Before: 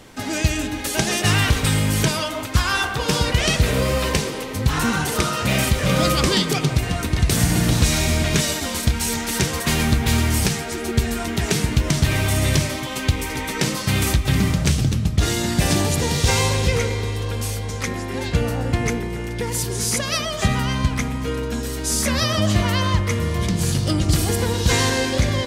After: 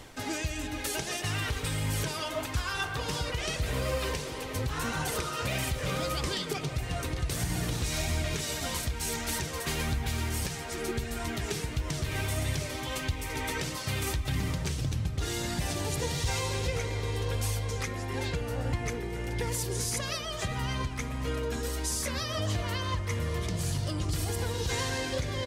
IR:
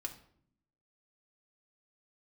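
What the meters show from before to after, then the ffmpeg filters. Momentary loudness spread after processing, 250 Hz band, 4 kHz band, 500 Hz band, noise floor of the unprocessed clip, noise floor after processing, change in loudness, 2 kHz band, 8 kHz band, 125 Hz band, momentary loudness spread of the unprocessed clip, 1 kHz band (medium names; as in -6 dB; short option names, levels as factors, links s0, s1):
3 LU, -14.0 dB, -11.5 dB, -10.0 dB, -28 dBFS, -37 dBFS, -11.5 dB, -11.0 dB, -11.0 dB, -11.5 dB, 7 LU, -10.5 dB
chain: -filter_complex "[0:a]equalizer=f=210:w=6.3:g=-9.5,alimiter=limit=0.168:level=0:latency=1:release=410,areverse,acompressor=mode=upward:threshold=0.0398:ratio=2.5,areverse,flanger=delay=0.9:depth=1.7:regen=62:speed=1.6:shape=triangular,asplit=2[s0][s1];[s1]adelay=1108,volume=0.251,highshelf=f=4000:g=-24.9[s2];[s0][s2]amix=inputs=2:normalize=0,volume=0.841"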